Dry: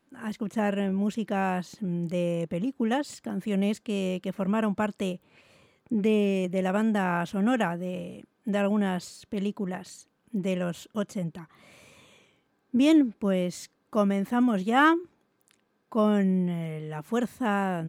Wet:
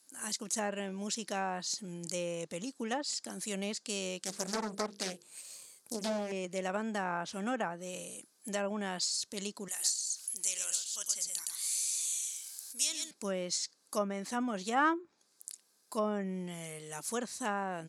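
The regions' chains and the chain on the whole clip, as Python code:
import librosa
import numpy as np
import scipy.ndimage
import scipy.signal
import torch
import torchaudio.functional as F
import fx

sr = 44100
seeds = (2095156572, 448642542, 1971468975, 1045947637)

y = fx.chain(x, sr, fx.hum_notches(base_hz=50, count=10),
    fx.resample_bad(factor=4, down='none', up='hold'),
    fx.doppler_dist(depth_ms=0.7), at=(4.19, 6.32))
y = fx.chain(y, sr, fx.differentiator(),
    fx.echo_single(ms=115, db=-7.0),
    fx.env_flatten(amount_pct=50), at=(9.68, 13.11))
y = fx.riaa(y, sr, side='recording')
y = fx.env_lowpass_down(y, sr, base_hz=1400.0, full_db=-23.5)
y = fx.band_shelf(y, sr, hz=6900.0, db=15.0, octaves=1.7)
y = y * 10.0 ** (-5.5 / 20.0)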